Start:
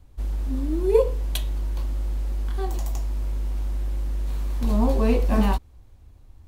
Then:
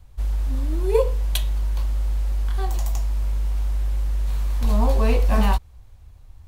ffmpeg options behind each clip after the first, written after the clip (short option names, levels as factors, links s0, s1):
-af "equalizer=f=290:t=o:w=1.3:g=-10.5,volume=1.58"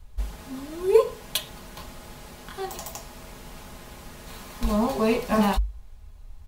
-af "bandreject=f=50:t=h:w=6,bandreject=f=100:t=h:w=6,bandreject=f=150:t=h:w=6,aecho=1:1:4.8:0.53"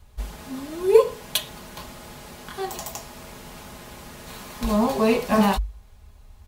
-af "highpass=f=70:p=1,volume=1.41"